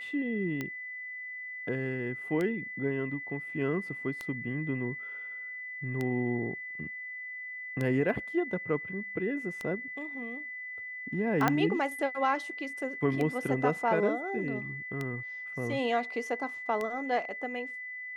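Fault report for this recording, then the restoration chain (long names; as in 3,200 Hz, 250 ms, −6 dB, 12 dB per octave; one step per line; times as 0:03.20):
scratch tick 33 1/3 rpm −20 dBFS
whistle 2,000 Hz −38 dBFS
0:11.48: click −11 dBFS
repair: click removal
notch filter 2,000 Hz, Q 30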